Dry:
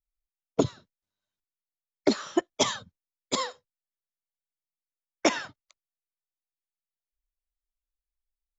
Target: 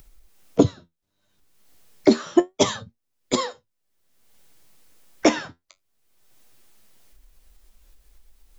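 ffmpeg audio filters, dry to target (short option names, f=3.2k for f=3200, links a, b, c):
-filter_complex "[0:a]acrossover=split=550|1200[a][b][c];[a]acontrast=80[d];[d][b][c]amix=inputs=3:normalize=0,flanger=delay=8.1:depth=6.4:regen=61:speed=0.31:shape=sinusoidal,acompressor=mode=upward:threshold=-35dB:ratio=2.5,volume=6.5dB"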